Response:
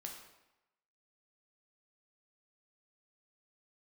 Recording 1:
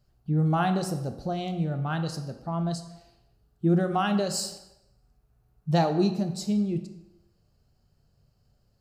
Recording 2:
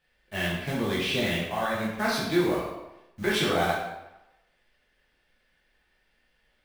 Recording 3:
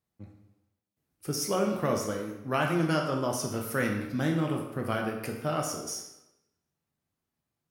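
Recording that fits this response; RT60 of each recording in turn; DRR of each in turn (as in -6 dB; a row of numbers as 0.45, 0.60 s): 3; 0.95, 0.95, 0.95 s; 7.0, -6.0, 0.5 dB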